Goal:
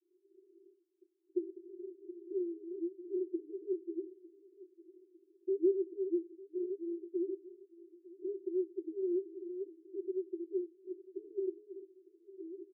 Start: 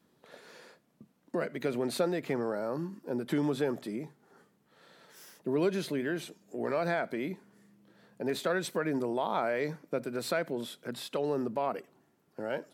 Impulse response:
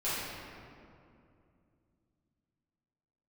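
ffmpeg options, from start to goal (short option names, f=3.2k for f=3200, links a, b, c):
-filter_complex "[0:a]asplit=2[a][b];[b]asoftclip=type=tanh:threshold=-33.5dB,volume=-9dB[c];[a][c]amix=inputs=2:normalize=0,crystalizer=i=4.5:c=0,aecho=1:1:903|1806|2709:0.112|0.0471|0.0198,asettb=1/sr,asplit=3[d][e][f];[d]atrim=end=1.424[g];[e]atrim=start=1.42:end=2.29,asetpts=PTS-STARTPTS,afade=t=in:d=0.004:c=qsin,afade=t=out:st=0.866:d=0.004:c=qsin,aeval=exprs='(mod(26.6*val(0)+1,2)-1)/26.6':c=same[h];[f]atrim=start=2.286[i];[g][h]acrossfade=d=0.004:c1=hsin:c2=qsin[j];[j][i]acrossfade=d=0.004:c1=qsin:c2=hsin,asuperpass=centerf=360:order=12:qfactor=4.8,volume=1dB"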